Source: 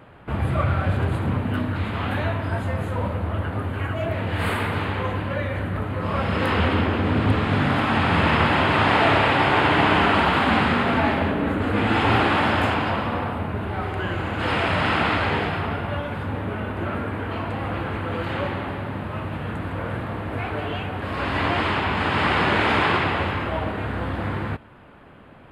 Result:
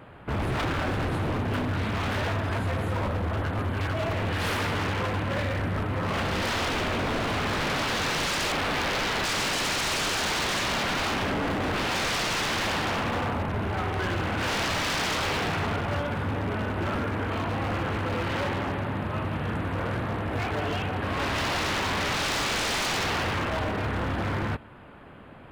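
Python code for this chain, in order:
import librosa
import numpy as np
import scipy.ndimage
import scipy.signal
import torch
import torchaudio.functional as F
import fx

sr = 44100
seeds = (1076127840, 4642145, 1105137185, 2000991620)

y = fx.lowpass(x, sr, hz=1500.0, slope=12, at=(8.52, 9.25))
y = 10.0 ** (-22.5 / 20.0) * (np.abs((y / 10.0 ** (-22.5 / 20.0) + 3.0) % 4.0 - 2.0) - 1.0)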